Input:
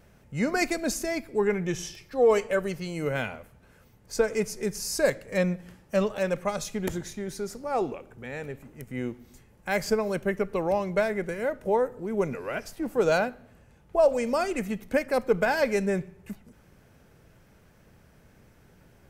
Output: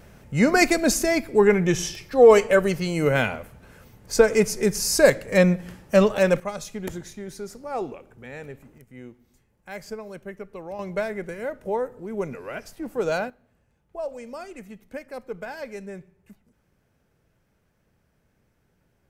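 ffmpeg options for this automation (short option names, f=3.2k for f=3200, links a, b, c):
-af "asetnsamples=n=441:p=0,asendcmd='6.4 volume volume -2dB;8.78 volume volume -10dB;10.79 volume volume -2dB;13.3 volume volume -11dB',volume=8dB"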